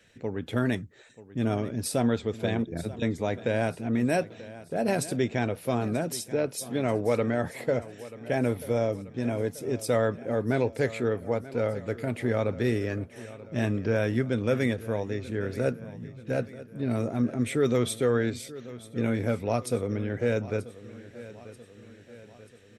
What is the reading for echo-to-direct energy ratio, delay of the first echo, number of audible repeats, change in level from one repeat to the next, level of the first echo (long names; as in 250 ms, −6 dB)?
−15.5 dB, 935 ms, 4, −5.5 dB, −17.0 dB